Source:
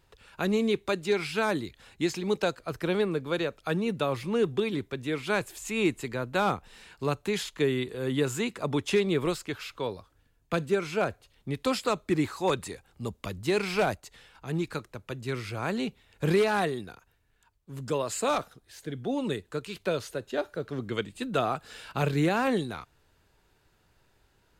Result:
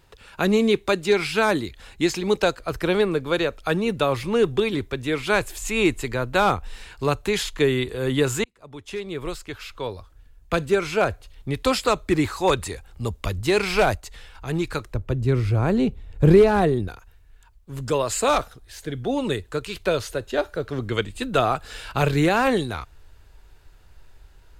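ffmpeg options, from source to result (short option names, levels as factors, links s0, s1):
-filter_complex "[0:a]asettb=1/sr,asplit=3[s0][s1][s2];[s0]atrim=end=14.944[s3];[s1]atrim=start=14.94:end=16.88,asetpts=PTS-STARTPTS,afade=t=in:d=0.004:c=qsin,afade=t=out:st=1.936:d=0.004:c=qsin,tiltshelf=f=700:g=8.5[s4];[s2]atrim=start=16.876[s5];[s3][s4]acrossfade=d=0.004:c1=hsin:c2=qsin[s6];[s6][s5]acrossfade=d=0.004:c1=qsin:c2=hsin,asplit=2[s7][s8];[s7]atrim=end=8.44,asetpts=PTS-STARTPTS,afade=t=out:st=8.436:d=0.004:c=hsin[s9];[s8]atrim=start=8.44,asetpts=PTS-STARTPTS,afade=t=in:d=2.32[s10];[s9][s10]concat=n=2:v=0:a=1,asubboost=boost=7:cutoff=63,volume=2.37"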